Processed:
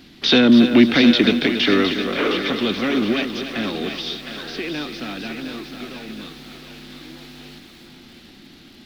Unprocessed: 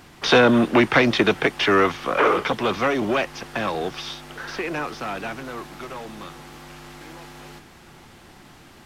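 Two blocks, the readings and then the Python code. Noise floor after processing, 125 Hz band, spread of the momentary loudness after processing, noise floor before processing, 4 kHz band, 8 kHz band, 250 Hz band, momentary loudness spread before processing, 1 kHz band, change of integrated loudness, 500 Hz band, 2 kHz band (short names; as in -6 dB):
-46 dBFS, -0.5 dB, 21 LU, -48 dBFS, +6.5 dB, -1.5 dB, +7.0 dB, 19 LU, -7.0 dB, +2.5 dB, -1.5 dB, -1.0 dB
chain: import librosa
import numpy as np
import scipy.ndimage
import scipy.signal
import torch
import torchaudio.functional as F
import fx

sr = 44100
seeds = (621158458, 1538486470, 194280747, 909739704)

y = fx.graphic_eq_10(x, sr, hz=(125, 250, 500, 1000, 4000, 8000), db=(-4, 11, -3, -10, 11, -9))
y = fx.echo_thinned(y, sr, ms=713, feedback_pct=43, hz=410.0, wet_db=-7.5)
y = fx.echo_crushed(y, sr, ms=281, feedback_pct=35, bits=7, wet_db=-9.5)
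y = y * 10.0 ** (-1.5 / 20.0)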